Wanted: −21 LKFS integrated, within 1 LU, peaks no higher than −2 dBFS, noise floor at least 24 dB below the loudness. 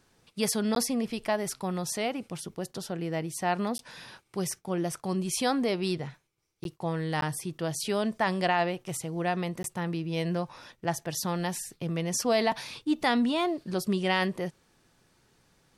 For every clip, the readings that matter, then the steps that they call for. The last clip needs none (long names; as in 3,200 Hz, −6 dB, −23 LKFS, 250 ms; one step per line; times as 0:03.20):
number of dropouts 5; longest dropout 12 ms; integrated loudness −30.0 LKFS; sample peak −13.0 dBFS; target loudness −21.0 LKFS
→ repair the gap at 0:00.75/0:03.78/0:06.64/0:07.21/0:09.63, 12 ms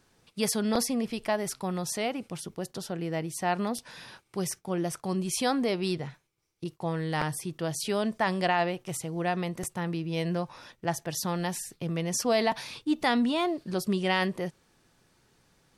number of dropouts 0; integrated loudness −30.0 LKFS; sample peak −13.0 dBFS; target loudness −21.0 LKFS
→ level +9 dB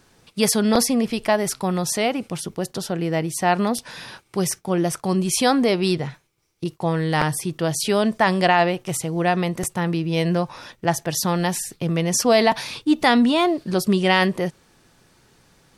integrated loudness −21.0 LKFS; sample peak −4.0 dBFS; background noise floor −60 dBFS